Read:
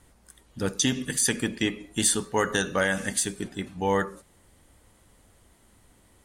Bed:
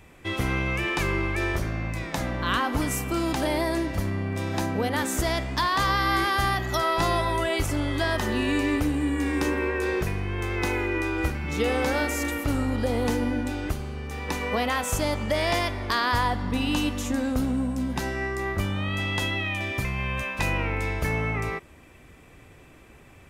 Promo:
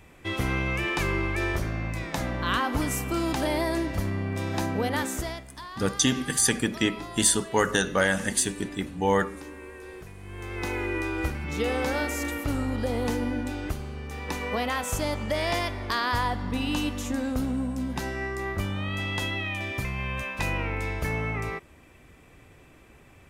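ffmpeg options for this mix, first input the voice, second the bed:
ffmpeg -i stem1.wav -i stem2.wav -filter_complex "[0:a]adelay=5200,volume=1.5dB[link_01];[1:a]volume=13dB,afade=type=out:start_time=4.96:duration=0.49:silence=0.16788,afade=type=in:start_time=10.16:duration=0.7:silence=0.199526[link_02];[link_01][link_02]amix=inputs=2:normalize=0" out.wav

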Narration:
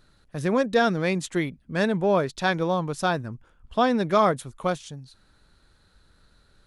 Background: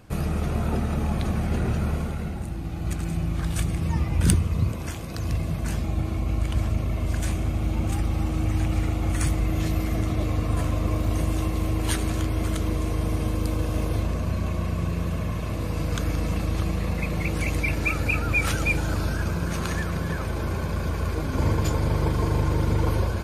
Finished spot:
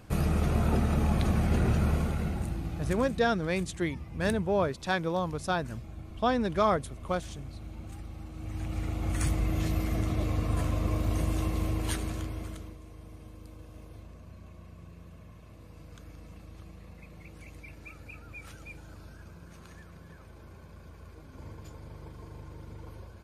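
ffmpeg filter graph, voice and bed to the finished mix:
ffmpeg -i stem1.wav -i stem2.wav -filter_complex "[0:a]adelay=2450,volume=-5.5dB[link_01];[1:a]volume=12dB,afade=type=out:start_time=2.42:duration=0.87:silence=0.149624,afade=type=in:start_time=8.34:duration=0.96:silence=0.223872,afade=type=out:start_time=11.61:duration=1.16:silence=0.125893[link_02];[link_01][link_02]amix=inputs=2:normalize=0" out.wav

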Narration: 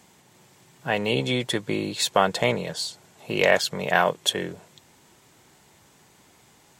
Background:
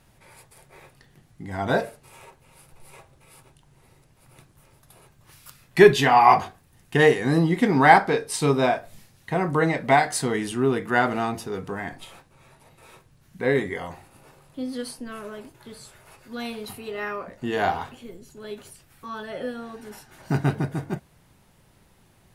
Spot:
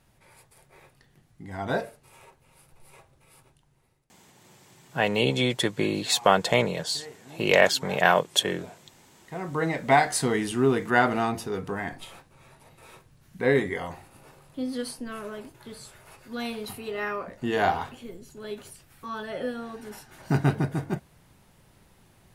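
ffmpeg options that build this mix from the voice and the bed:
ffmpeg -i stem1.wav -i stem2.wav -filter_complex "[0:a]adelay=4100,volume=0.5dB[link_01];[1:a]volume=22.5dB,afade=type=out:start_time=3.42:duration=0.76:silence=0.0749894,afade=type=in:start_time=9.13:duration=0.97:silence=0.0421697[link_02];[link_01][link_02]amix=inputs=2:normalize=0" out.wav

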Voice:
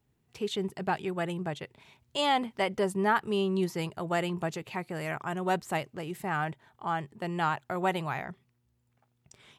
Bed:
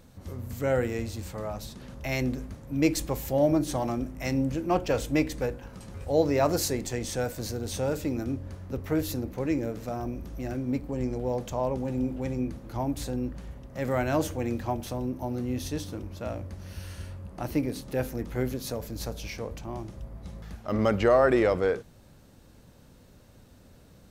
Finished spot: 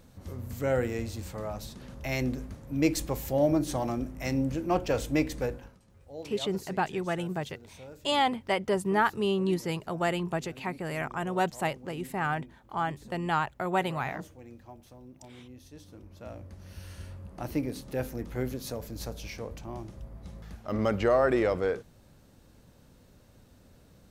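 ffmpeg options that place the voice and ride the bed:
ffmpeg -i stem1.wav -i stem2.wav -filter_complex "[0:a]adelay=5900,volume=1dB[link_01];[1:a]volume=14dB,afade=type=out:start_time=5.56:duration=0.22:silence=0.141254,afade=type=in:start_time=15.69:duration=1.45:silence=0.16788[link_02];[link_01][link_02]amix=inputs=2:normalize=0" out.wav

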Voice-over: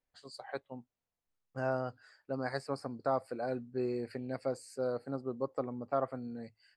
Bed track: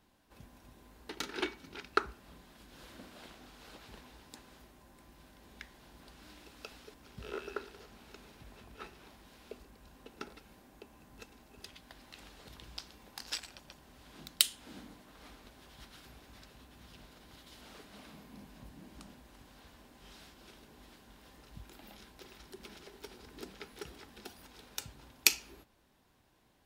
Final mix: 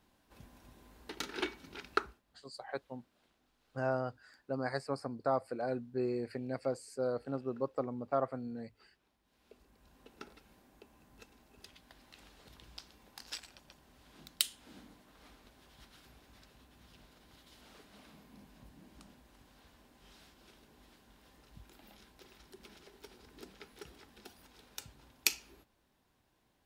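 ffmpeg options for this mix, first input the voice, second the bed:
ffmpeg -i stem1.wav -i stem2.wav -filter_complex "[0:a]adelay=2200,volume=0dB[link_01];[1:a]volume=15dB,afade=type=out:start_time=1.93:duration=0.29:silence=0.1,afade=type=in:start_time=9.23:duration=0.84:silence=0.158489[link_02];[link_01][link_02]amix=inputs=2:normalize=0" out.wav

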